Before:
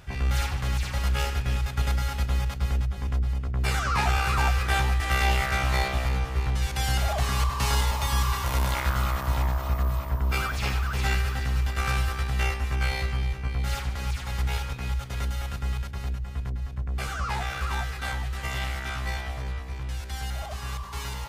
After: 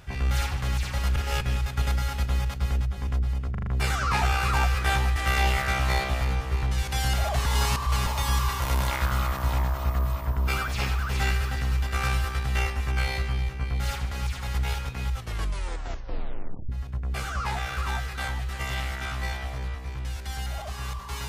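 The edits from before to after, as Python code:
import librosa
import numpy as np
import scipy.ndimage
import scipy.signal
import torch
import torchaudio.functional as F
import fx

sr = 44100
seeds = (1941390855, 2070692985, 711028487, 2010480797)

y = fx.edit(x, sr, fx.reverse_span(start_s=1.16, length_s=0.25),
    fx.stutter(start_s=3.51, slice_s=0.04, count=5),
    fx.reverse_span(start_s=7.3, length_s=0.6),
    fx.tape_stop(start_s=14.94, length_s=1.59), tone=tone)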